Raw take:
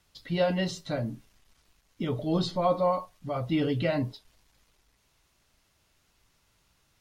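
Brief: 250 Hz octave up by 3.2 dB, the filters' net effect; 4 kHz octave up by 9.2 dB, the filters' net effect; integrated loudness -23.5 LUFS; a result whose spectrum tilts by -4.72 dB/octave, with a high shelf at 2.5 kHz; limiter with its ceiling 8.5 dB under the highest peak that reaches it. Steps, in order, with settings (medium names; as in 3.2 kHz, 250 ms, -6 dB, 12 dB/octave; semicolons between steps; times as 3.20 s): peaking EQ 250 Hz +4.5 dB; treble shelf 2.5 kHz +4.5 dB; peaking EQ 4 kHz +7.5 dB; trim +7.5 dB; peak limiter -13.5 dBFS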